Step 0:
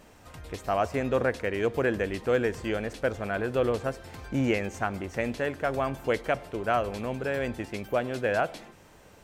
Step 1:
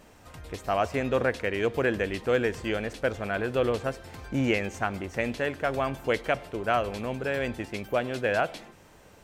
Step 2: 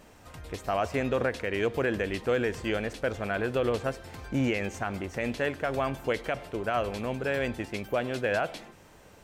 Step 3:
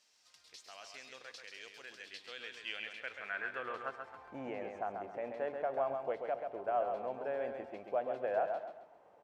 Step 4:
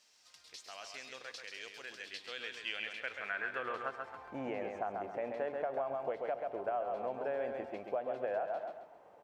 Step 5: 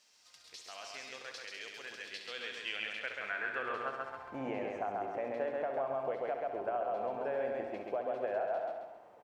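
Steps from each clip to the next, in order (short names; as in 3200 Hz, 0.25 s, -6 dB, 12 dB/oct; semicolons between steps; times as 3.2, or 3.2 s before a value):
dynamic EQ 3000 Hz, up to +4 dB, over -43 dBFS, Q 0.96
limiter -17.5 dBFS, peak gain reduction 6 dB
band-pass sweep 5000 Hz -> 700 Hz, 1.98–4.6; on a send: feedback echo 0.134 s, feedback 34%, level -6 dB; on the sum: gain -2.5 dB
compressor 6:1, threshold -36 dBFS, peak gain reduction 8 dB; gain +3.5 dB
feedback echo 67 ms, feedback 47%, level -8.5 dB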